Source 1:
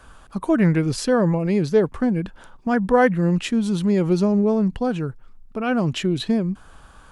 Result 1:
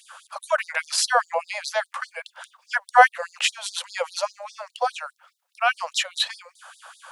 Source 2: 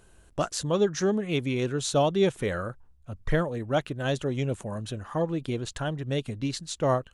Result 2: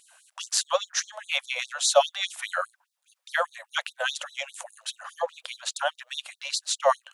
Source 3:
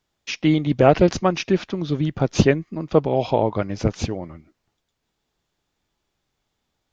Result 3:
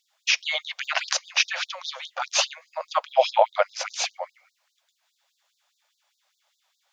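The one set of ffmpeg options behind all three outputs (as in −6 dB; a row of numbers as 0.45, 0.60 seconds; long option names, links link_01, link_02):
-af "apsyclip=8dB,afftfilt=real='re*gte(b*sr/1024,490*pow(3700/490,0.5+0.5*sin(2*PI*4.9*pts/sr)))':imag='im*gte(b*sr/1024,490*pow(3700/490,0.5+0.5*sin(2*PI*4.9*pts/sr)))':win_size=1024:overlap=0.75"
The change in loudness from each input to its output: −3.0, 0.0, −4.5 LU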